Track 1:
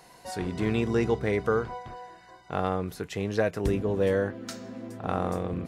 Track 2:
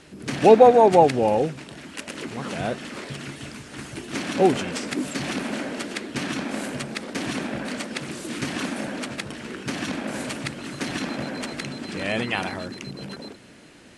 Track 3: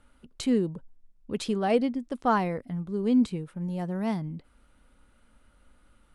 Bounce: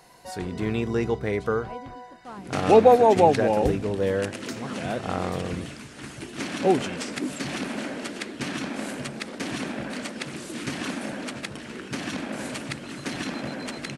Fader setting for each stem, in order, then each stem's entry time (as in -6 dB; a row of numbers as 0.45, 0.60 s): 0.0, -2.5, -18.0 dB; 0.00, 2.25, 0.00 s